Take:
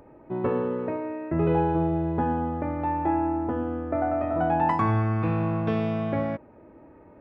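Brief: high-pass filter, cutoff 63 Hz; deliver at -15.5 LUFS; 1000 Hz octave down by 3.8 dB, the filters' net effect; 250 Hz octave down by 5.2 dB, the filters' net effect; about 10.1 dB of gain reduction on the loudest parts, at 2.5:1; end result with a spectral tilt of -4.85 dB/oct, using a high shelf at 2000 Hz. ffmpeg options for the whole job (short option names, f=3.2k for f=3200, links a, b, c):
-af "highpass=63,equalizer=f=250:t=o:g=-7.5,equalizer=f=1k:t=o:g=-6,highshelf=f=2k:g=8,acompressor=threshold=-38dB:ratio=2.5,volume=22.5dB"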